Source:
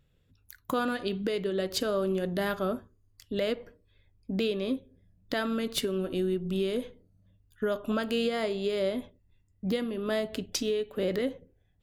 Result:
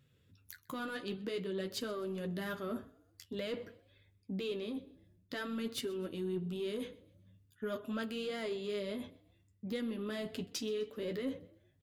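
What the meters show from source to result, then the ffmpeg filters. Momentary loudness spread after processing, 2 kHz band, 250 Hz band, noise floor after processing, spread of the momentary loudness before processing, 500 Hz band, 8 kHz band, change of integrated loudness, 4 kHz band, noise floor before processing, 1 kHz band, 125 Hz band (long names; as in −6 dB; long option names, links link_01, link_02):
11 LU, −8.0 dB, −8.0 dB, −71 dBFS, 7 LU, −9.5 dB, −9.0 dB, −9.0 dB, −8.0 dB, −68 dBFS, −10.5 dB, −7.5 dB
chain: -filter_complex "[0:a]highpass=88,equalizer=frequency=720:width=1.6:gain=-7,areverse,acompressor=threshold=-37dB:ratio=6,areverse,asoftclip=type=tanh:threshold=-30dB,flanger=delay=7.6:depth=7.3:regen=-31:speed=0.51:shape=triangular,asplit=4[link_01][link_02][link_03][link_04];[link_02]adelay=127,afreqshift=30,volume=-22.5dB[link_05];[link_03]adelay=254,afreqshift=60,volume=-30dB[link_06];[link_04]adelay=381,afreqshift=90,volume=-37.6dB[link_07];[link_01][link_05][link_06][link_07]amix=inputs=4:normalize=0,volume=5.5dB"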